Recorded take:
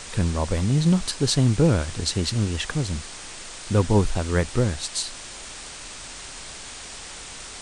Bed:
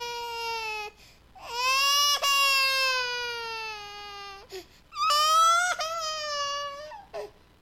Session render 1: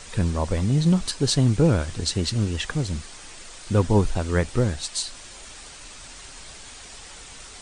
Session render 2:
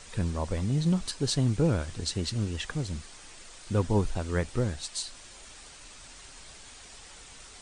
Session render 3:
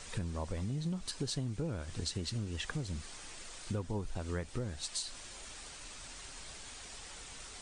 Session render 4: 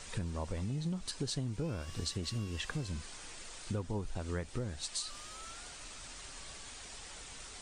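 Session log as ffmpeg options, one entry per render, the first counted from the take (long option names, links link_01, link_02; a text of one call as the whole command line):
ffmpeg -i in.wav -af "afftdn=noise_reduction=6:noise_floor=-39" out.wav
ffmpeg -i in.wav -af "volume=-6.5dB" out.wav
ffmpeg -i in.wav -af "acompressor=threshold=-34dB:ratio=6" out.wav
ffmpeg -i in.wav -i bed.wav -filter_complex "[1:a]volume=-33dB[link_01];[0:a][link_01]amix=inputs=2:normalize=0" out.wav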